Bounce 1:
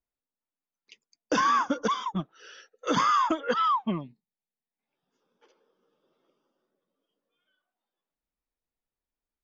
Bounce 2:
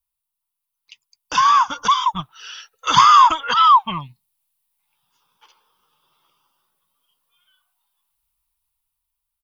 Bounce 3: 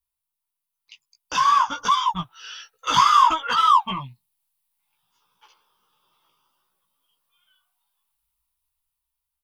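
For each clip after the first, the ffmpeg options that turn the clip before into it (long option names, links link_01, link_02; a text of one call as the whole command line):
ffmpeg -i in.wav -af "firequalizer=gain_entry='entry(110,0);entry(220,-21);entry(560,-21);entry(940,2);entry(1700,-8);entry(2800,2);entry(4200,1);entry(6700,-2);entry(10000,10)':delay=0.05:min_phase=1,dynaudnorm=framelen=640:gausssize=5:maxgain=9dB,volume=5.5dB" out.wav
ffmpeg -i in.wav -filter_complex "[0:a]asplit=2[link_01][link_02];[link_02]asoftclip=type=hard:threshold=-17dB,volume=-5.5dB[link_03];[link_01][link_03]amix=inputs=2:normalize=0,flanger=delay=15.5:depth=2.7:speed=1.5,volume=-3dB" out.wav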